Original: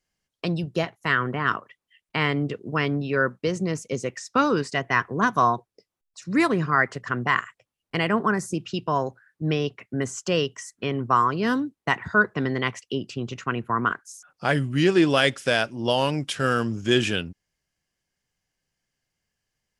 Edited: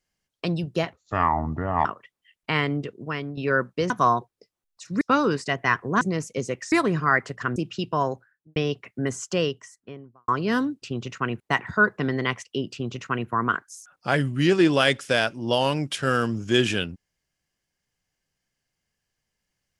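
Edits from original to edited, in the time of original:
0.93–1.51 s: speed 63%
2.21–3.03 s: fade out, to -10 dB
3.56–4.27 s: swap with 5.27–6.38 s
7.22–8.51 s: delete
9.05–9.51 s: studio fade out
10.18–11.23 s: studio fade out
13.08–13.66 s: copy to 11.77 s

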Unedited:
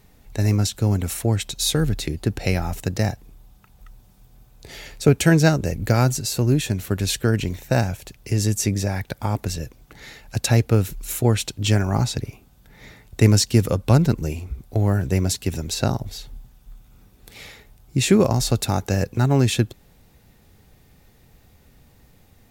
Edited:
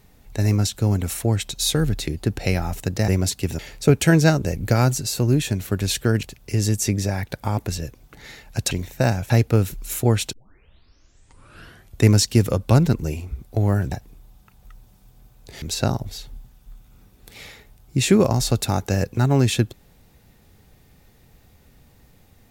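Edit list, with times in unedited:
3.08–4.78 s: swap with 15.11–15.62 s
7.42–8.01 s: move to 10.49 s
11.52 s: tape start 1.72 s

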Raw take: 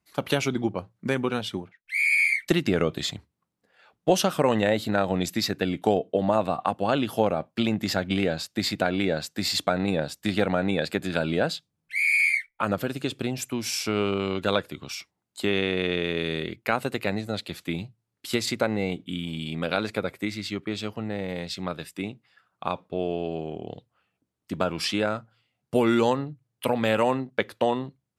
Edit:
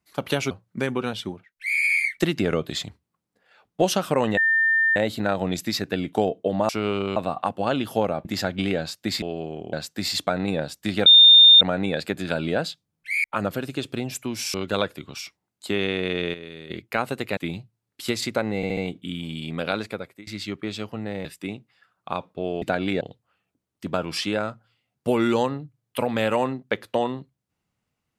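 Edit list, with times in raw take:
0.51–0.79 s: delete
4.65 s: add tone 1.8 kHz -16.5 dBFS 0.59 s
7.47–7.77 s: delete
8.74–9.13 s: swap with 23.17–23.68 s
10.46 s: add tone 3.63 kHz -7.5 dBFS 0.55 s
12.09–12.51 s: delete
13.81–14.28 s: move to 6.38 s
16.08–16.44 s: gain -11.5 dB
17.11–17.62 s: delete
18.81 s: stutter 0.07 s, 4 plays
19.80–20.31 s: fade out, to -22.5 dB
21.29–21.80 s: delete

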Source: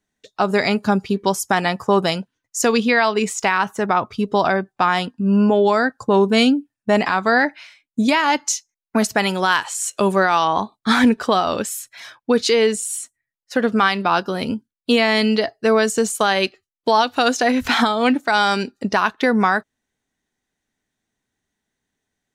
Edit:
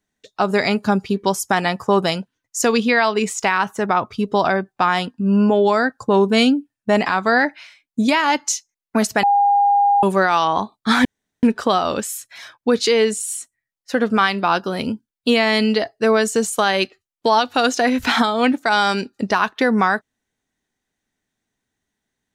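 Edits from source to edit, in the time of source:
9.23–10.03 s: bleep 809 Hz -11.5 dBFS
11.05 s: insert room tone 0.38 s

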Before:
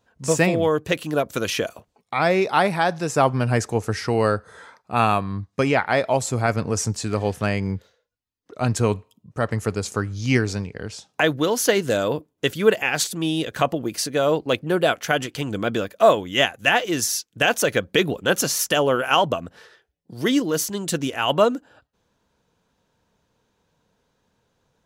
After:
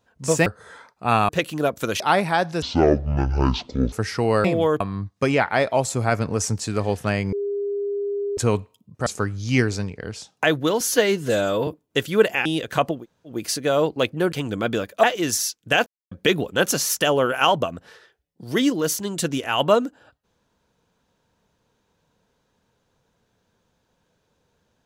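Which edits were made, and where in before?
0.46–0.82 s: swap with 4.34–5.17 s
1.53–2.47 s: delete
3.09–3.82 s: speed 56%
7.69–8.74 s: bleep 404 Hz -22.5 dBFS
9.43–9.83 s: delete
11.57–12.15 s: stretch 1.5×
12.93–13.29 s: delete
13.82 s: insert room tone 0.34 s, crossfade 0.16 s
14.82–15.34 s: delete
16.05–16.73 s: delete
17.56–17.81 s: mute

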